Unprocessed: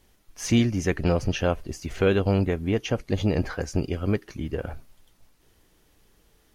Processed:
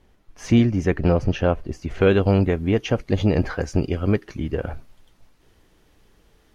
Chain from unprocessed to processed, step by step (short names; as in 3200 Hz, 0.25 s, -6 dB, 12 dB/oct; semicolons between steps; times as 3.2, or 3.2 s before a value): LPF 1600 Hz 6 dB/oct, from 2.01 s 3900 Hz; gain +4.5 dB